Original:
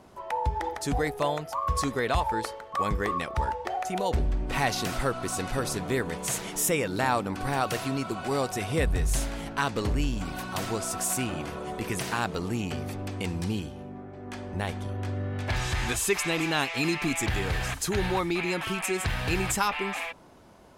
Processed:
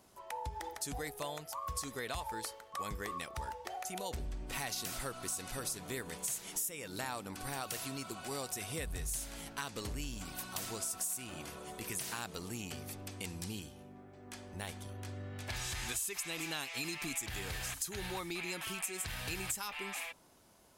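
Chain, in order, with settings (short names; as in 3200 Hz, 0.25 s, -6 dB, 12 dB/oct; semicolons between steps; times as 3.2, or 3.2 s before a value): pre-emphasis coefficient 0.8; compressor 6:1, threshold -36 dBFS, peak gain reduction 13.5 dB; gain +1 dB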